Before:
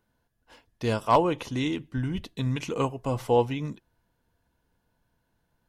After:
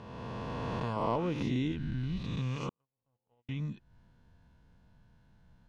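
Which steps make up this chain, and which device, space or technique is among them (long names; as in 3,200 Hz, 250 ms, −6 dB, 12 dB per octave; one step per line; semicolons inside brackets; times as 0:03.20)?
peak hold with a rise ahead of every peak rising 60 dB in 1.62 s
jukebox (low-pass filter 5,400 Hz 12 dB per octave; low shelf with overshoot 250 Hz +6.5 dB, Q 1.5; downward compressor 3 to 1, threshold −39 dBFS, peak gain reduction 19.5 dB)
0:00.96–0:01.72: parametric band 310 Hz +6.5 dB 1.9 octaves
0:02.69–0:03.49: noise gate −29 dBFS, range −56 dB
level +1.5 dB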